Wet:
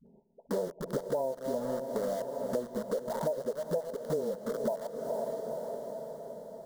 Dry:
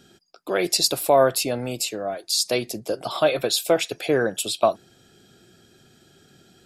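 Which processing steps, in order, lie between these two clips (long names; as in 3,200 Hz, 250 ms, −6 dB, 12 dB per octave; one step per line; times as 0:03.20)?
delay that plays each chunk backwards 189 ms, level −13 dB
linear-phase brick-wall low-pass 1,000 Hz
all-pass dispersion highs, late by 66 ms, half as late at 390 Hz
convolution reverb RT60 0.70 s, pre-delay 5 ms, DRR 16.5 dB
in parallel at −3 dB: bit reduction 5 bits
on the sum: parametric band 780 Hz +6 dB 0.53 octaves
phaser with its sweep stopped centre 500 Hz, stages 8
feedback delay with all-pass diffusion 476 ms, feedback 59%, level −14 dB
downward compressor 12 to 1, threshold −29 dBFS, peak gain reduction 19.5 dB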